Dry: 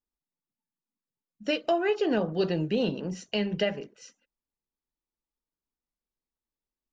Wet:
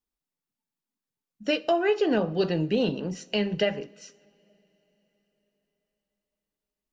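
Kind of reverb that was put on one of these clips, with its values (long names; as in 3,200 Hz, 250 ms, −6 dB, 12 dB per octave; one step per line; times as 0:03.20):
coupled-rooms reverb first 0.51 s, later 4.6 s, from −21 dB, DRR 17 dB
level +2 dB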